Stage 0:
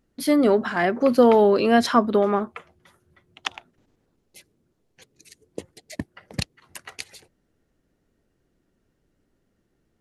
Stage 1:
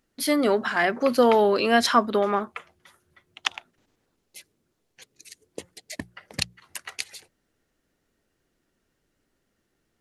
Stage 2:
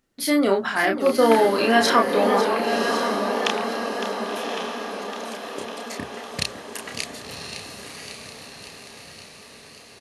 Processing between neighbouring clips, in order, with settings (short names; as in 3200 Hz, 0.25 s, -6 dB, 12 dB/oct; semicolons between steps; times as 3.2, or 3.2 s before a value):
tilt shelf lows -5 dB, about 770 Hz; notches 60/120/180 Hz; gain -1 dB
doubler 31 ms -3.5 dB; diffused feedback echo 1.075 s, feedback 55%, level -5.5 dB; warbling echo 0.554 s, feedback 67%, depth 145 cents, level -11 dB